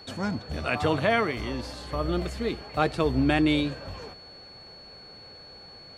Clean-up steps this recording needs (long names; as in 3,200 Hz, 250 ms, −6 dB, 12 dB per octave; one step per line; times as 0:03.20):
notch filter 4,400 Hz, Q 30